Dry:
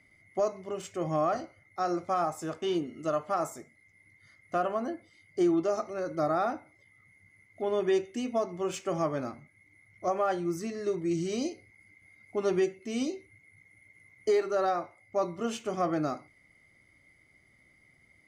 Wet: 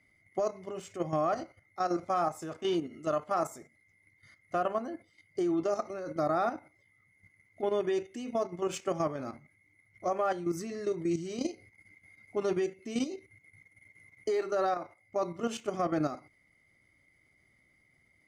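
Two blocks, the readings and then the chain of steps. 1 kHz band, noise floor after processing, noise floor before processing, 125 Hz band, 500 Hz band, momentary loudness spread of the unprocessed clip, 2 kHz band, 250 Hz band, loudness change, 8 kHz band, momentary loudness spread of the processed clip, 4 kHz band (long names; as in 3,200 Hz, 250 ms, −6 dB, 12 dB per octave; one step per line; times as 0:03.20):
−1.5 dB, −69 dBFS, −64 dBFS, −2.0 dB, −2.0 dB, 10 LU, −2.0 dB, −2.0 dB, −2.0 dB, −2.0 dB, 11 LU, −1.5 dB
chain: output level in coarse steps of 10 dB
level +2 dB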